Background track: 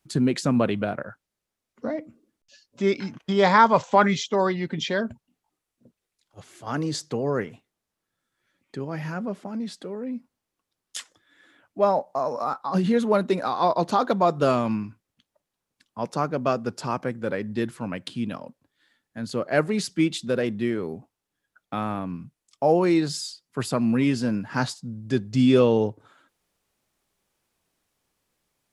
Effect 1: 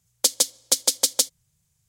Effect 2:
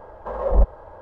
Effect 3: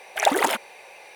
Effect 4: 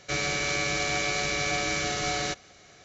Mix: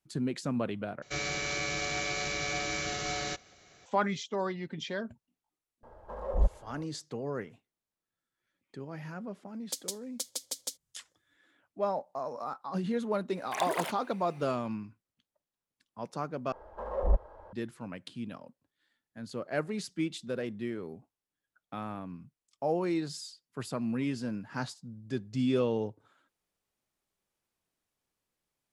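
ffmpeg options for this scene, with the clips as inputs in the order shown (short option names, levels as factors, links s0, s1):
-filter_complex "[2:a]asplit=2[s0][s1];[0:a]volume=0.299[s2];[s0]bass=f=250:g=3,treble=f=4000:g=5[s3];[s1]equalizer=f=130:t=o:w=0.58:g=-10.5[s4];[s2]asplit=3[s5][s6][s7];[s5]atrim=end=1.024[s8];[4:a]atrim=end=2.84,asetpts=PTS-STARTPTS,volume=0.531[s9];[s6]atrim=start=3.856:end=16.524[s10];[s4]atrim=end=1.01,asetpts=PTS-STARTPTS,volume=0.355[s11];[s7]atrim=start=17.526[s12];[s3]atrim=end=1.01,asetpts=PTS-STARTPTS,volume=0.251,afade=t=in:d=0.004:c=hsin,afade=t=out:st=1.006:d=0.004:c=hsin,adelay=5830[s13];[1:a]atrim=end=1.88,asetpts=PTS-STARTPTS,volume=0.141,afade=t=in:d=0.004:c=hsin,afade=t=out:st=1.876:d=0.004:c=hsin,adelay=9480[s14];[3:a]atrim=end=1.15,asetpts=PTS-STARTPTS,volume=0.224,afade=t=in:d=0.004:c=hsin,afade=t=out:st=1.146:d=0.004:c=hsin,adelay=13350[s15];[s8][s9]acrossfade=d=0.004:c1=hsin:c2=hsin[s16];[s16][s10]acrossfade=d=0.004:c1=hsin:c2=hsin[s17];[s17][s11]acrossfade=d=0.004:c1=hsin:c2=hsin[s18];[s18][s12]acrossfade=d=0.004:c1=hsin:c2=hsin[s19];[s19][s13][s14][s15]amix=inputs=4:normalize=0"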